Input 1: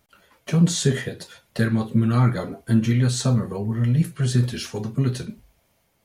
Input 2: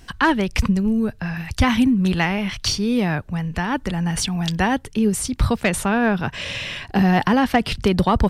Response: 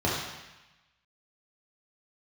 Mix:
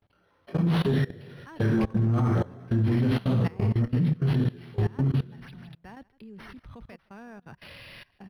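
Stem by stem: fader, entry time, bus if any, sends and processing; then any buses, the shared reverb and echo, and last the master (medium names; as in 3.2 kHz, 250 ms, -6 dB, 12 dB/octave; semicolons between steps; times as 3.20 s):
-1.5 dB, 0.00 s, send -10.5 dB, no echo send, chorus voices 2, 1.4 Hz, delay 20 ms, depth 3.2 ms
-12.5 dB, 1.25 s, no send, echo send -16 dB, trance gate ".xxx.x..xxxx.." 70 bpm -12 dB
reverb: on, RT60 1.0 s, pre-delay 3 ms
echo: delay 162 ms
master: level held to a coarse grid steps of 22 dB; hard clipper -17.5 dBFS, distortion -22 dB; decimation joined by straight lines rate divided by 6×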